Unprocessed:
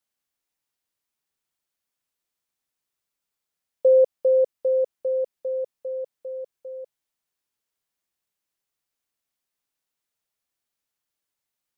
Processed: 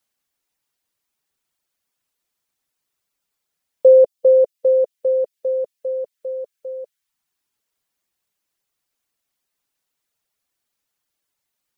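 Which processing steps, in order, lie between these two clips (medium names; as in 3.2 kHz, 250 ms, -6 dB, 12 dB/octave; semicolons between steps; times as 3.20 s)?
reverb removal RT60 0.55 s; trim +7 dB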